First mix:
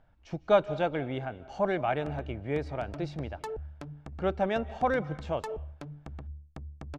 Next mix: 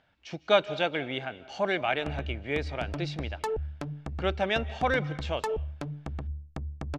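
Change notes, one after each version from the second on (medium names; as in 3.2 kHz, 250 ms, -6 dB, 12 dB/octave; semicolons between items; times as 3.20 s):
speech: add frequency weighting D; background +6.5 dB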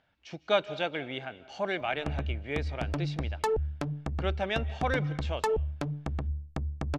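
speech -3.5 dB; background +3.0 dB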